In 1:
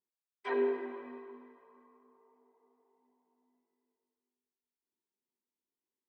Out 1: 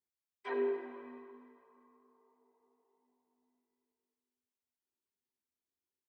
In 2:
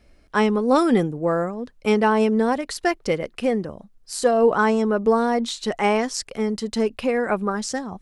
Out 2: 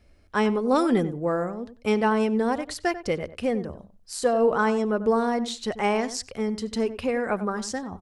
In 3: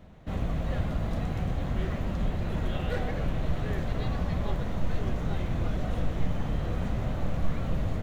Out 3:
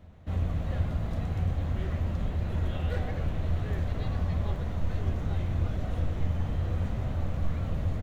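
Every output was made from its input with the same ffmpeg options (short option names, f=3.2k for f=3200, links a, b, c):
-filter_complex "[0:a]equalizer=f=84:w=4:g=13.5,asplit=2[a][b];[b]adelay=93,lowpass=f=1.7k:p=1,volume=-12.5dB,asplit=2[c][d];[d]adelay=93,lowpass=f=1.7k:p=1,volume=0.16[e];[c][e]amix=inputs=2:normalize=0[f];[a][f]amix=inputs=2:normalize=0,volume=-4dB"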